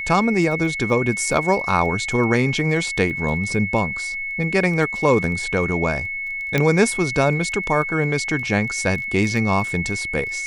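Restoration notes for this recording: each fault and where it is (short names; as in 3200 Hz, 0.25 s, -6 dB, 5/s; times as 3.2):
crackle 10/s -28 dBFS
tone 2200 Hz -25 dBFS
6.58 pop -6 dBFS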